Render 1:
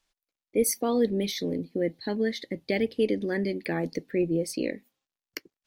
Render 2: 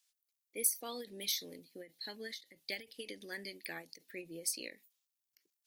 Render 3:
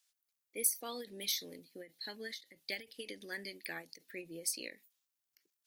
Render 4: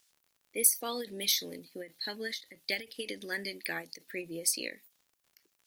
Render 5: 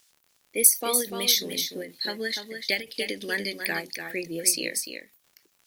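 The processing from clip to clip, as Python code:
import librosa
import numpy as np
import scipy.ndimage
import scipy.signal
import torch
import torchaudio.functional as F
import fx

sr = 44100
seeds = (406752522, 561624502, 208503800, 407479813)

y1 = scipy.signal.lfilter([1.0, -0.97], [1.0], x)
y1 = fx.end_taper(y1, sr, db_per_s=210.0)
y1 = F.gain(torch.from_numpy(y1), 4.0).numpy()
y2 = fx.peak_eq(y1, sr, hz=1500.0, db=2.5, octaves=0.77)
y3 = fx.dmg_crackle(y2, sr, seeds[0], per_s=52.0, level_db=-59.0)
y3 = F.gain(torch.from_numpy(y3), 7.0).numpy()
y4 = y3 + 10.0 ** (-7.5 / 20.0) * np.pad(y3, (int(295 * sr / 1000.0), 0))[:len(y3)]
y4 = F.gain(torch.from_numpy(y4), 7.0).numpy()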